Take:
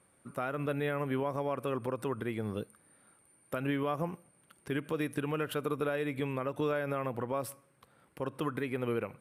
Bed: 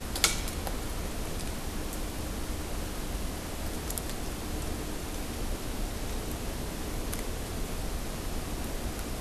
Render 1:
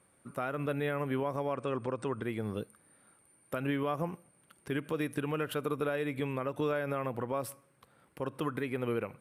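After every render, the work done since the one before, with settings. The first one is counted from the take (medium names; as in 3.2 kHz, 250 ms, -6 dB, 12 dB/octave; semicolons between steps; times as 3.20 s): 1.54–2.23 s: brick-wall FIR low-pass 9.1 kHz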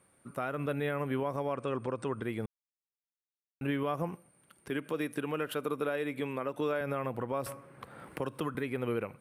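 2.46–3.61 s: mute; 4.69–6.81 s: high-pass 180 Hz; 7.46–8.55 s: three bands compressed up and down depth 70%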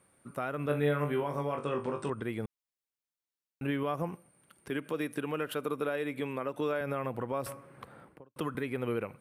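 0.67–2.10 s: flutter echo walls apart 3.5 m, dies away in 0.26 s; 7.77–8.36 s: studio fade out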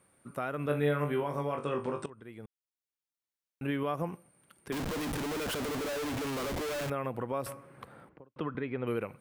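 2.06–3.82 s: fade in, from -17.5 dB; 4.72–6.90 s: Schmitt trigger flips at -50 dBFS; 8.09–8.87 s: distance through air 250 m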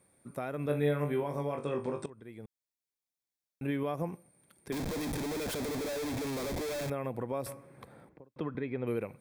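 peaking EQ 1.3 kHz -7.5 dB 0.76 oct; band-stop 2.9 kHz, Q 5.5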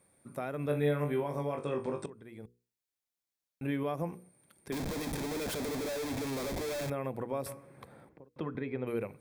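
hum notches 60/120/180/240/300/360/420/480 Hz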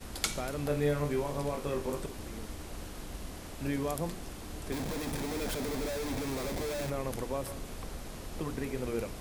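add bed -7.5 dB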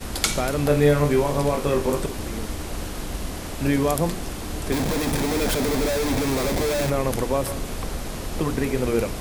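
trim +12 dB; peak limiter -2 dBFS, peak gain reduction 3 dB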